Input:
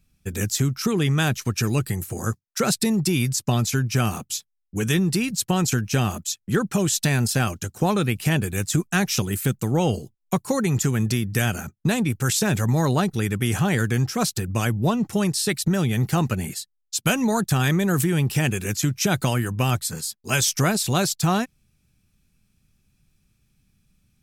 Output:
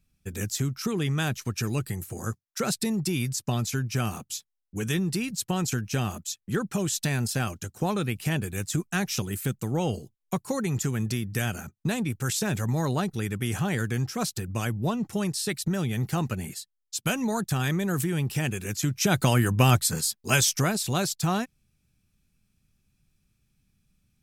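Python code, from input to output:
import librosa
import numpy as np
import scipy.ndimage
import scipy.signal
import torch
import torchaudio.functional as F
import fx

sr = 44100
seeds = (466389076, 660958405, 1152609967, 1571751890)

y = fx.gain(x, sr, db=fx.line((18.69, -6.0), (19.47, 2.5), (20.16, 2.5), (20.7, -5.0)))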